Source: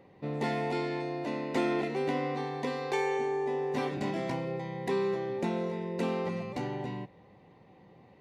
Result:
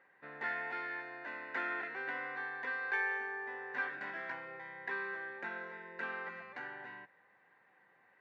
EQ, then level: band-pass 1600 Hz, Q 10; air absorption 63 m; +13.5 dB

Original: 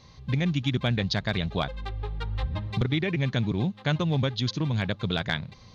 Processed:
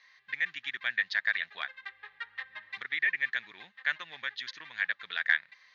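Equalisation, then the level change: resonant high-pass 1800 Hz, resonance Q 8.4; air absorption 53 m; tilt -2 dB/oct; -4.5 dB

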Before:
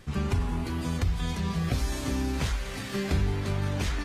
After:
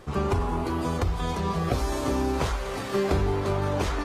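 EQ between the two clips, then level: band shelf 650 Hz +9.5 dB 2.3 oct; 0.0 dB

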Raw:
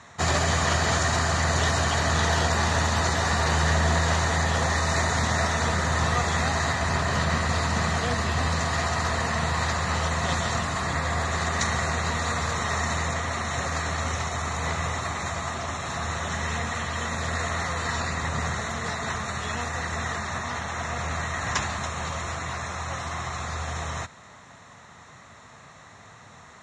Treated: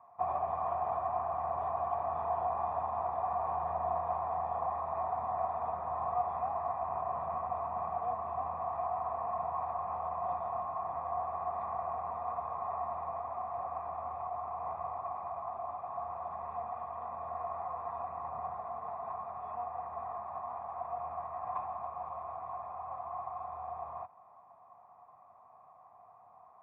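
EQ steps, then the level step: vocal tract filter a; +2.0 dB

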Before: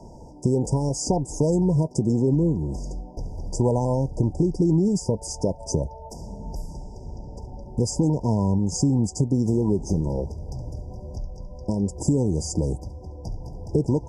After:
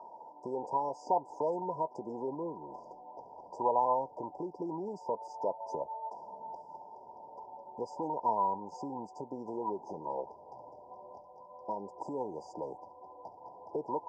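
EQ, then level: HPF 870 Hz 12 dB/oct; synth low-pass 1200 Hz, resonance Q 11; 0.0 dB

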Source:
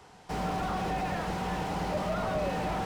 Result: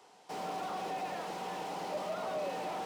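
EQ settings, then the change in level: HPF 350 Hz 12 dB/oct; bell 1600 Hz -5.5 dB 0.98 oct; -3.5 dB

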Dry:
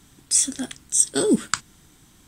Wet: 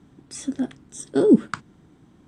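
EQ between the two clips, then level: band-pass 280 Hz, Q 0.56; +5.0 dB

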